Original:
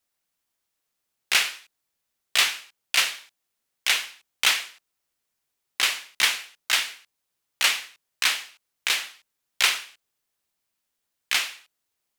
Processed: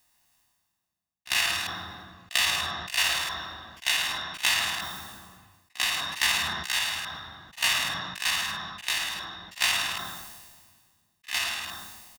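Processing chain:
spectrum averaged block by block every 50 ms
reversed playback
upward compression, threshold −28 dBFS
reversed playback
power curve on the samples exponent 1.4
comb filter 1.1 ms, depth 62%
echo ahead of the sound 44 ms −18 dB
on a send at −7.5 dB: convolution reverb RT60 1.1 s, pre-delay 3 ms
on the sum: level that may fall only so fast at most 34 dB per second

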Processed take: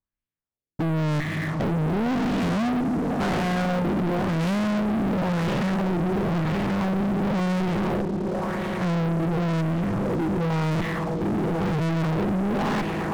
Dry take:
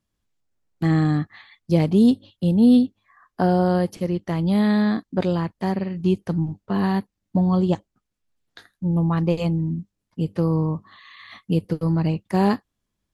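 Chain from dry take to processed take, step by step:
spectrum averaged block by block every 400 ms
tube saturation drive 32 dB, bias 0.7
echo that builds up and dies away 113 ms, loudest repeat 8, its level −17 dB
auto-filter low-pass sine 0.95 Hz 320–2,700 Hz
leveller curve on the samples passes 5

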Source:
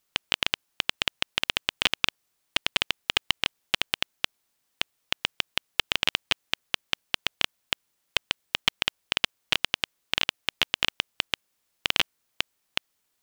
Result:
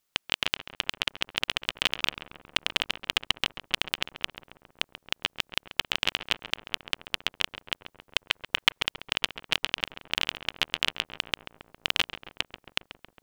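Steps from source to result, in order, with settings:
on a send: feedback echo with a low-pass in the loop 136 ms, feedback 73%, low-pass 1,800 Hz, level −10 dB
0:08.20–0:08.82: on the sum: dynamic equaliser 1,700 Hz, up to +6 dB, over −40 dBFS, Q 0.73
level −2 dB

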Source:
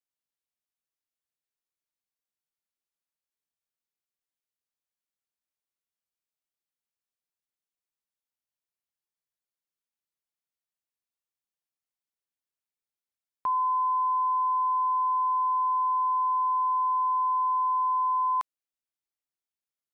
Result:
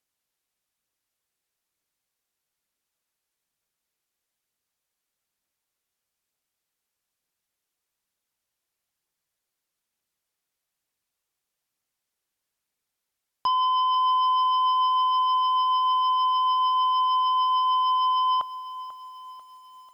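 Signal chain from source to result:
phase shifter 1.1 Hz, delay 2.9 ms, feedback 20%
treble cut that deepens with the level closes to 1,100 Hz, closed at −24.5 dBFS
harmonic generator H 2 −41 dB, 5 −14 dB, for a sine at −21 dBFS
feedback echo at a low word length 492 ms, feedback 55%, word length 9 bits, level −14.5 dB
level +4.5 dB

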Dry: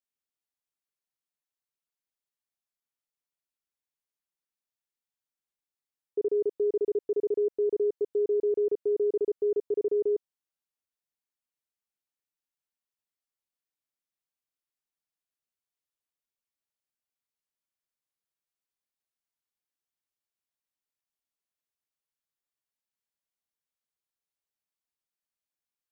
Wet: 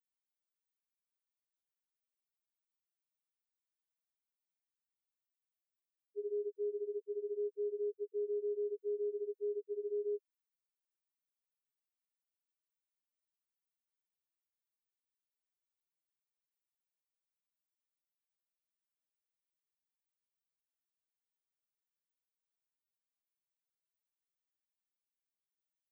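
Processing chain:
spectral tilt +5.5 dB per octave
spectral peaks only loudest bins 1
level +1 dB

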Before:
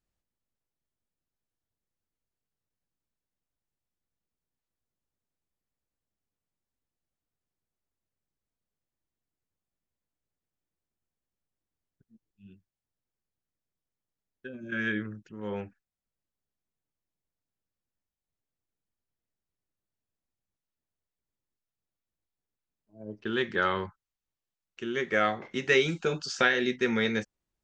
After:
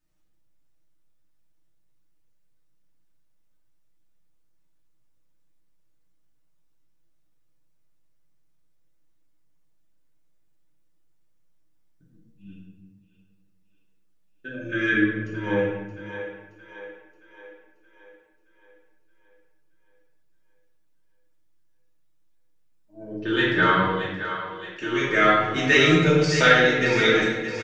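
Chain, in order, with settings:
comb filter 6.5 ms, depth 74%
on a send: echo with a time of its own for lows and highs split 390 Hz, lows 175 ms, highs 623 ms, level −10.5 dB
on the sum: rectangular room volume 560 cubic metres, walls mixed, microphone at 2.6 metres
level +1 dB

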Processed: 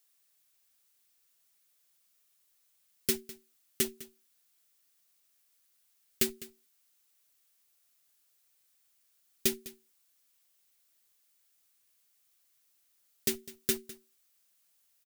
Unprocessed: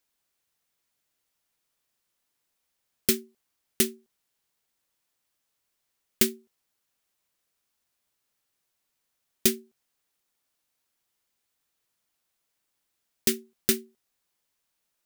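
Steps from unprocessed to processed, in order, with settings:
in parallel at −8 dB: comparator with hysteresis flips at −29 dBFS
on the sum: comb filter 7.2 ms, depth 65%
background noise blue −64 dBFS
notch filter 920 Hz, Q 8.6
on a send: single-tap delay 204 ms −18 dB
on the sum: level −7.5 dB

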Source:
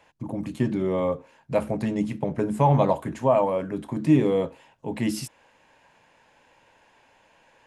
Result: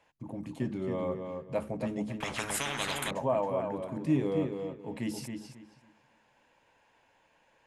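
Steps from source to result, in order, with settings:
on a send: feedback echo with a low-pass in the loop 272 ms, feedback 25%, low-pass 4,900 Hz, level −5.5 dB
0:02.20–0:03.11: on the sum: every bin compressed towards the loudest bin 10 to 1
level −9 dB

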